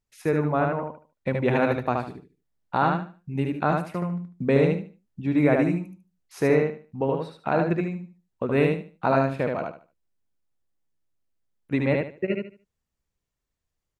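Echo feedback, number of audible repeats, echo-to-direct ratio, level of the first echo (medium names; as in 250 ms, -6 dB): 25%, 3, -2.5 dB, -3.0 dB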